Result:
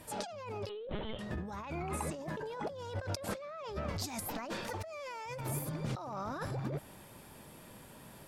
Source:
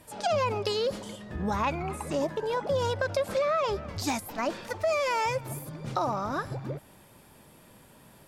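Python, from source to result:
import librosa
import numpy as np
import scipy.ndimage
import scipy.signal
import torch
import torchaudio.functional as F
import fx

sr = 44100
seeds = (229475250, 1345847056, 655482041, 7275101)

y = fx.over_compress(x, sr, threshold_db=-36.0, ratio=-1.0)
y = fx.lpc_vocoder(y, sr, seeds[0], excitation='pitch_kept', order=16, at=(0.69, 1.19))
y = y * 10.0 ** (-4.0 / 20.0)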